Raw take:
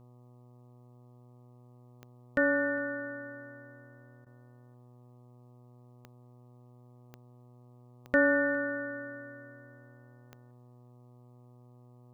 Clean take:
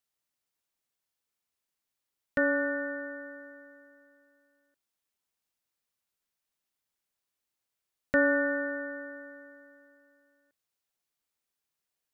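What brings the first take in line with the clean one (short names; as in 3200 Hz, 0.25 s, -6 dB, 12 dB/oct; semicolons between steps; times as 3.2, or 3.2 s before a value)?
de-click; de-hum 122.7 Hz, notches 10; interpolate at 4.25, 13 ms; inverse comb 0.408 s -23.5 dB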